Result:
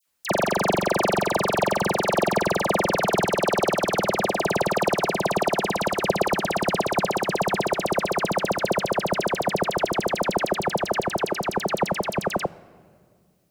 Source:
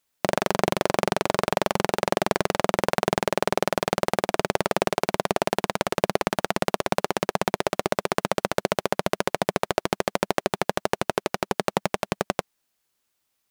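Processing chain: band-stop 3.5 kHz, Q 24; phase dispersion lows, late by 66 ms, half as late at 1.8 kHz; on a send: reverberation RT60 2.0 s, pre-delay 6 ms, DRR 17.5 dB; on the sum: trim +2 dB

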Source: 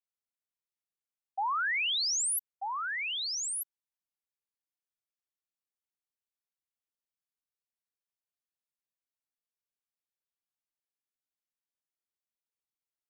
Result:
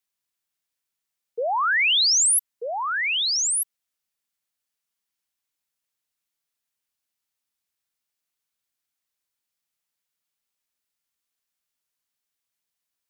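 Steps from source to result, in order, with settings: frequency shift -310 Hz; tilt shelf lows -4 dB; trim +7.5 dB

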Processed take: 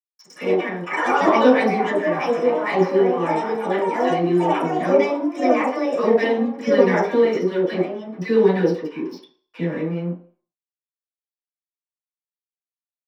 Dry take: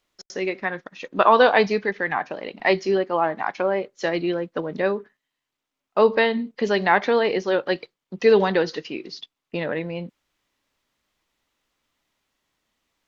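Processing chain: high-order bell 1.3 kHz -12 dB 2.9 oct; crossover distortion -44 dBFS; ever faster or slower copies 89 ms, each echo +4 st, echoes 3; bands offset in time highs, lows 50 ms, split 960 Hz; reverberation RT60 0.45 s, pre-delay 3 ms, DRR -10.5 dB; trim -7.5 dB

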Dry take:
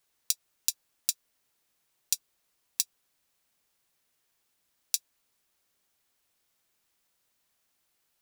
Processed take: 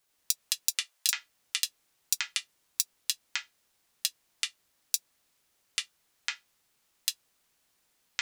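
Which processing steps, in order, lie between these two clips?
ever faster or slower copies 91 ms, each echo -6 st, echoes 3; 0.69–1.10 s: high-pass 280 Hz -> 730 Hz 24 dB/octave

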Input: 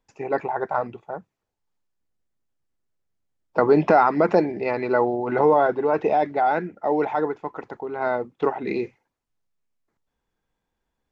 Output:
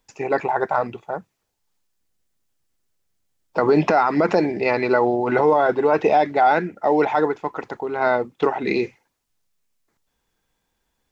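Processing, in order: treble shelf 2.5 kHz +9.5 dB; peak limiter -11.5 dBFS, peak gain reduction 7.5 dB; trim +4 dB

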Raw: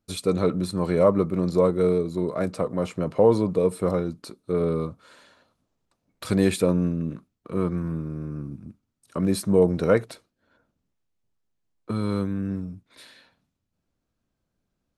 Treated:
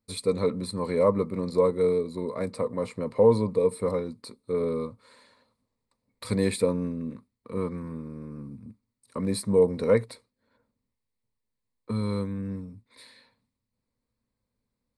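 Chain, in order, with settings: rippled EQ curve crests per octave 0.95, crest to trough 10 dB; trim -5 dB

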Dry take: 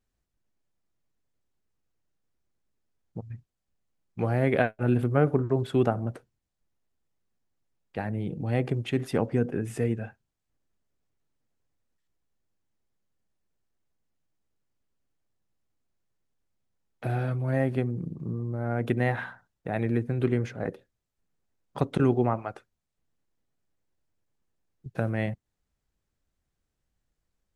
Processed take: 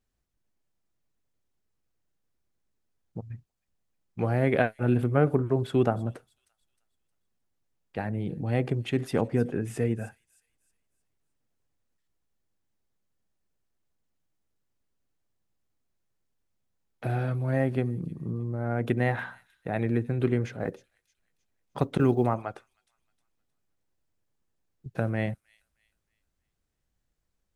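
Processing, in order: feedback echo behind a high-pass 311 ms, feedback 38%, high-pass 5.5 kHz, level -10 dB; 20.60–22.35 s: short-mantissa float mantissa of 6-bit

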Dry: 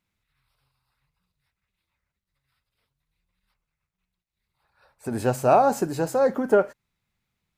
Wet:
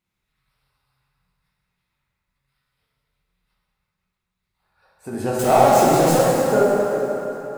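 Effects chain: 5.39–6.22 s: jump at every zero crossing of -21 dBFS; on a send: thinning echo 413 ms, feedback 38%, level -18 dB; on the sum: plate-style reverb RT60 3.5 s, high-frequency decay 0.65×, DRR -6 dB; trim -3.5 dB

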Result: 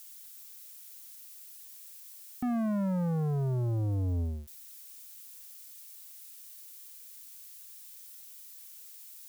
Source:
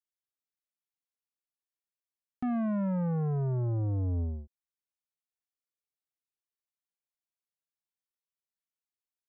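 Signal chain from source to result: zero-crossing glitches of -41.5 dBFS

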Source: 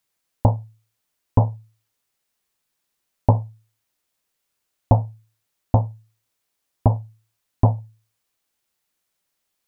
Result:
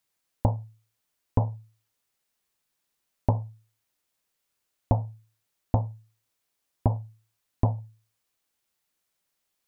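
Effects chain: compression 3:1, threshold -17 dBFS, peak gain reduction 6.5 dB; trim -2.5 dB

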